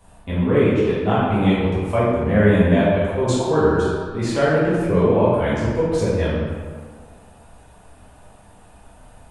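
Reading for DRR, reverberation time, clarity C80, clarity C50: -10.5 dB, 1.8 s, 0.5 dB, -2.0 dB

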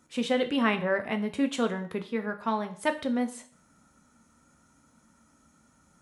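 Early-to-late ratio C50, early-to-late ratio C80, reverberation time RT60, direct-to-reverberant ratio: 14.5 dB, 17.5 dB, 0.50 s, 7.0 dB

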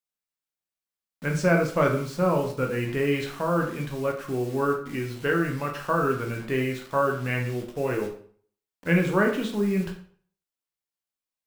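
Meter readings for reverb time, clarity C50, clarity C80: 0.50 s, 8.0 dB, 11.5 dB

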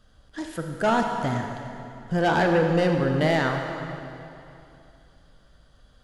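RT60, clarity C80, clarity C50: 2.8 s, 4.5 dB, 4.0 dB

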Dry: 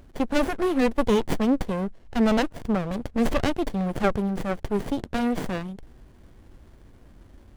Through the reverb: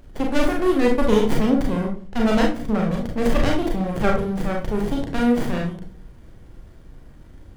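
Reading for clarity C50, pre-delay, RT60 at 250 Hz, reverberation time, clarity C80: 6.5 dB, 33 ms, 0.65 s, 0.45 s, 13.0 dB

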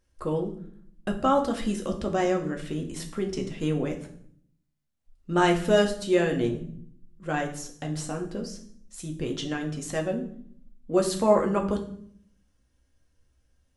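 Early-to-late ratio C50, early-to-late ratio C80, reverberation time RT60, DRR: 10.0 dB, 14.0 dB, 0.60 s, 2.0 dB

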